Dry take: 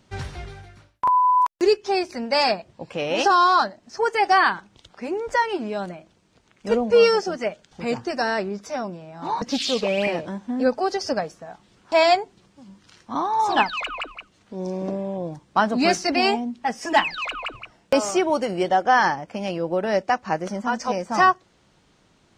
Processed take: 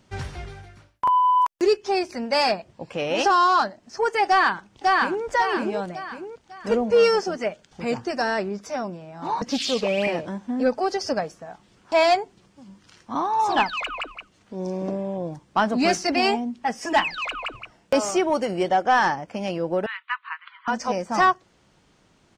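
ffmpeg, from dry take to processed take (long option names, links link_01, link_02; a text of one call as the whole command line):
ffmpeg -i in.wav -filter_complex "[0:a]asplit=2[link_01][link_02];[link_02]afade=type=in:start_time=4.26:duration=0.01,afade=type=out:start_time=5.25:duration=0.01,aecho=0:1:550|1100|1650|2200|2750:0.841395|0.336558|0.134623|0.0538493|0.0215397[link_03];[link_01][link_03]amix=inputs=2:normalize=0,asettb=1/sr,asplit=3[link_04][link_05][link_06];[link_04]atrim=end=19.864[link_07];[link_05]atrim=start=19.86:end=20.68,asetpts=PTS-STARTPTS,afade=type=in:duration=0.004:curve=qsin,afade=type=out:start_time=0.816:duration=0.004:curve=qsin,asuperpass=centerf=2000:order=20:qfactor=0.68[link_08];[link_06]atrim=start=20.676[link_09];[link_07][link_08]acrossfade=duration=0.004:curve1=hsin:curve2=qsin[link_10];[link_10][link_09]acrossfade=duration=0.004:curve1=qsin:curve2=hsin,equalizer=frequency=3900:width_type=o:width=0.24:gain=-3,acontrast=76,volume=-7dB" out.wav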